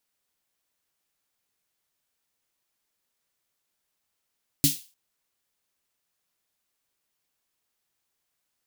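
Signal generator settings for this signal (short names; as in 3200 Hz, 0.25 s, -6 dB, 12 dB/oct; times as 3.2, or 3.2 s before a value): snare drum length 0.30 s, tones 150 Hz, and 280 Hz, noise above 2900 Hz, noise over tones 1 dB, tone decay 0.17 s, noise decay 0.34 s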